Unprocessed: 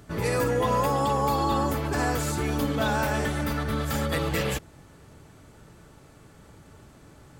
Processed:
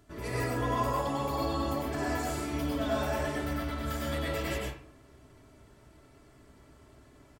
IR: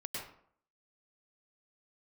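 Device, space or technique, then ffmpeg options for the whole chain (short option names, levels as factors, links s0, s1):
microphone above a desk: -filter_complex "[0:a]aecho=1:1:3:0.51[s0];[1:a]atrim=start_sample=2205[s1];[s0][s1]afir=irnorm=-1:irlink=0,volume=0.447"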